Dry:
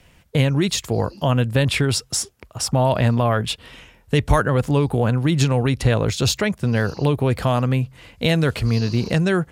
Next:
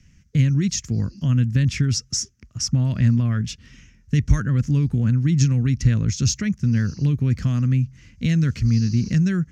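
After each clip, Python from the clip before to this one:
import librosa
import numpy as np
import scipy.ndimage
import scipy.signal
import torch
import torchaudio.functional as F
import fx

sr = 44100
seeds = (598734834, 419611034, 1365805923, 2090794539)

y = fx.curve_eq(x, sr, hz=(230.0, 450.0, 820.0, 1300.0, 1900.0, 3800.0, 6100.0, 9000.0), db=(0, -19, -28, -14, -8, -15, 4, -20))
y = F.gain(torch.from_numpy(y), 1.5).numpy()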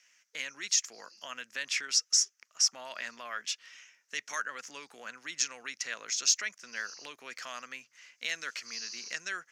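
y = scipy.signal.sosfilt(scipy.signal.butter(4, 670.0, 'highpass', fs=sr, output='sos'), x)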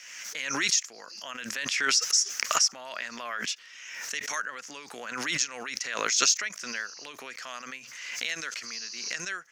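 y = fx.pre_swell(x, sr, db_per_s=38.0)
y = F.gain(torch.from_numpy(y), 1.5).numpy()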